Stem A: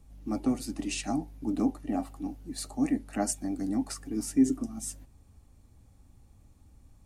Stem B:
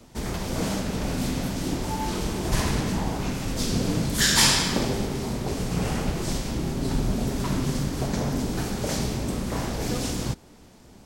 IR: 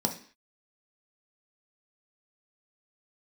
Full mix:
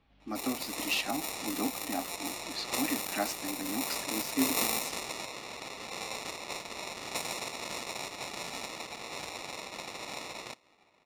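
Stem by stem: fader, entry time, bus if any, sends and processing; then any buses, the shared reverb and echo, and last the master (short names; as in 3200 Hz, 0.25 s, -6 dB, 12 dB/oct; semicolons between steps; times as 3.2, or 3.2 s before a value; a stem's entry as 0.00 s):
+1.5 dB, 0.00 s, no send, LPF 3900 Hz 24 dB/oct
-12.0 dB, 0.20 s, no send, spectral whitening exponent 0.3; sample-and-hold 28×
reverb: off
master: low-pass opened by the level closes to 2800 Hz, open at -27 dBFS; tilt +4.5 dB/oct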